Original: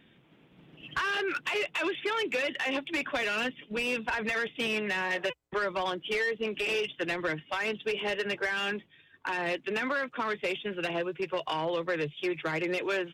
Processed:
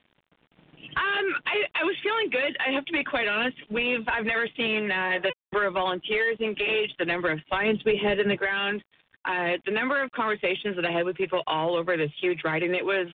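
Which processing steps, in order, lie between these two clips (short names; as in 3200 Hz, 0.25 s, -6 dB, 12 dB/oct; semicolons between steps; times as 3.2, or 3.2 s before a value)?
7.52–8.38 low shelf 370 Hz +11.5 dB; in parallel at -2 dB: vocal rider 0.5 s; on the sum: crossover distortion -54 dBFS; bit-crush 10-bit; downsampling 8000 Hz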